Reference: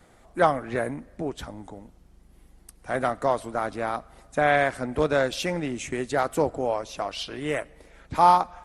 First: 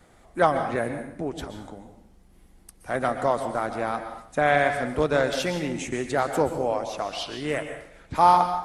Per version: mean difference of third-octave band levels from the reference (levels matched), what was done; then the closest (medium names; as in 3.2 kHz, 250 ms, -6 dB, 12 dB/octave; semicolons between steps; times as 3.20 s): 3.5 dB: plate-style reverb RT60 0.62 s, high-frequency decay 0.95×, pre-delay 110 ms, DRR 7.5 dB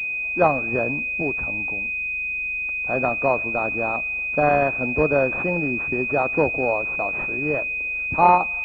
7.0 dB: class-D stage that switches slowly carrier 2.5 kHz; trim +3.5 dB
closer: first